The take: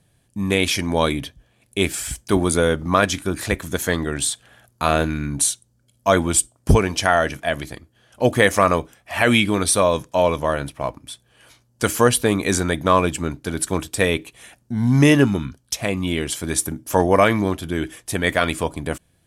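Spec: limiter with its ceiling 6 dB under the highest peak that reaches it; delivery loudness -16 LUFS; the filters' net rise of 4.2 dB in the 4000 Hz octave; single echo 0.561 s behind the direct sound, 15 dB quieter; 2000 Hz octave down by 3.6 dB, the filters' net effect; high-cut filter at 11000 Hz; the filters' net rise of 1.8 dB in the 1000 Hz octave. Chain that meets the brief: LPF 11000 Hz; bell 1000 Hz +4 dB; bell 2000 Hz -8 dB; bell 4000 Hz +8 dB; limiter -6.5 dBFS; echo 0.561 s -15 dB; gain +5 dB

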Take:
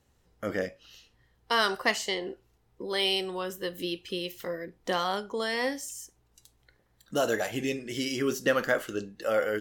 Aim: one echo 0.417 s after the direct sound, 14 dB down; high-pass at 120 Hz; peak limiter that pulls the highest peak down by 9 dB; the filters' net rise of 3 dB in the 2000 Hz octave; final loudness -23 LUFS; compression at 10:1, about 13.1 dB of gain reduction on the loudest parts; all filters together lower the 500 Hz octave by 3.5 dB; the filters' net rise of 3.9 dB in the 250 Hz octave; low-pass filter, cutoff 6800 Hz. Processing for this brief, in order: HPF 120 Hz; LPF 6800 Hz; bell 250 Hz +7 dB; bell 500 Hz -6.5 dB; bell 2000 Hz +4 dB; compressor 10:1, threshold -32 dBFS; limiter -27 dBFS; echo 0.417 s -14 dB; gain +16 dB

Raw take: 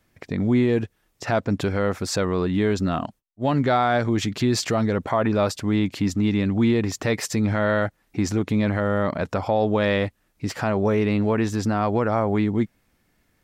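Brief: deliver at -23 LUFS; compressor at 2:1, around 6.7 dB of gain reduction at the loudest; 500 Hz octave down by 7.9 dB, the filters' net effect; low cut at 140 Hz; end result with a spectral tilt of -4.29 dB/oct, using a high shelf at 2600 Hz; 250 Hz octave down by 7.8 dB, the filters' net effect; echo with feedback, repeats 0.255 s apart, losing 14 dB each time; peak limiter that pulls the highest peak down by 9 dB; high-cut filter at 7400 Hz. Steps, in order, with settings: HPF 140 Hz; LPF 7400 Hz; bell 250 Hz -7 dB; bell 500 Hz -8.5 dB; high shelf 2600 Hz +5.5 dB; compressor 2:1, threshold -32 dBFS; limiter -24 dBFS; feedback echo 0.255 s, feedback 20%, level -14 dB; gain +12 dB

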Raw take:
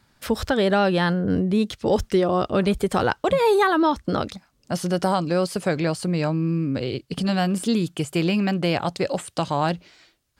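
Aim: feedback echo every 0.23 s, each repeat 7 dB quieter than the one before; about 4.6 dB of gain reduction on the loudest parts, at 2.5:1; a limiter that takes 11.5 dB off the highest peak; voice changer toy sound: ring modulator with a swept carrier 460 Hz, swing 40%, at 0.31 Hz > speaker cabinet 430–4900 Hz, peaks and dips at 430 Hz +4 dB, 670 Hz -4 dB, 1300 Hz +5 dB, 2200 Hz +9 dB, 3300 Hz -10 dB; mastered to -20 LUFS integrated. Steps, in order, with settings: compressor 2.5:1, threshold -22 dBFS; limiter -22 dBFS; feedback echo 0.23 s, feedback 45%, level -7 dB; ring modulator with a swept carrier 460 Hz, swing 40%, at 0.31 Hz; speaker cabinet 430–4900 Hz, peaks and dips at 430 Hz +4 dB, 670 Hz -4 dB, 1300 Hz +5 dB, 2200 Hz +9 dB, 3300 Hz -10 dB; gain +14 dB

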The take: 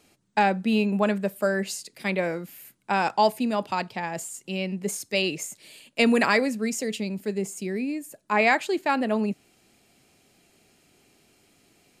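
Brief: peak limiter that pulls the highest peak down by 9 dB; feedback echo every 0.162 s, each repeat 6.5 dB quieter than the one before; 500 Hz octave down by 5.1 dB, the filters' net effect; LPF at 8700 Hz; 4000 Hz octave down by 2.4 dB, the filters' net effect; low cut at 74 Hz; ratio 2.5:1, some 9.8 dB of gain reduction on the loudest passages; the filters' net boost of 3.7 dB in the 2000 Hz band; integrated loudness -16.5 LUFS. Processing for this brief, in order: HPF 74 Hz; LPF 8700 Hz; bell 500 Hz -7 dB; bell 2000 Hz +6.5 dB; bell 4000 Hz -6.5 dB; compressor 2.5:1, threshold -29 dBFS; limiter -21.5 dBFS; feedback echo 0.162 s, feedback 47%, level -6.5 dB; gain +16 dB

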